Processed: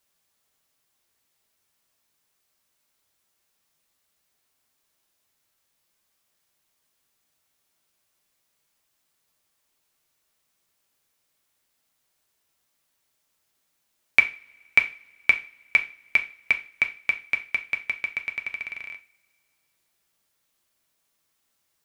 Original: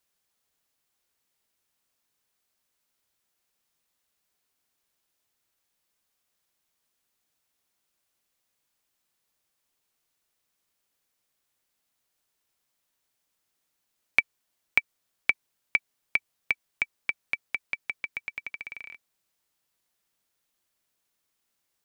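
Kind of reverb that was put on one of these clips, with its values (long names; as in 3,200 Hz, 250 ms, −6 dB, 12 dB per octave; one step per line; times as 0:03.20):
coupled-rooms reverb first 0.33 s, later 2.3 s, from −28 dB, DRR 4.5 dB
level +3.5 dB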